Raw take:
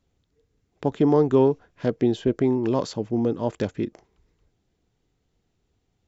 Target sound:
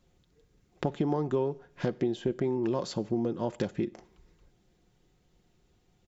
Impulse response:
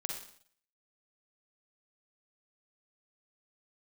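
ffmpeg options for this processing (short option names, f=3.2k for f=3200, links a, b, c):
-filter_complex "[0:a]aecho=1:1:5.6:0.39,acompressor=threshold=-32dB:ratio=4,asplit=2[a][b];[1:a]atrim=start_sample=2205[c];[b][c]afir=irnorm=-1:irlink=0,volume=-17dB[d];[a][d]amix=inputs=2:normalize=0,volume=3dB"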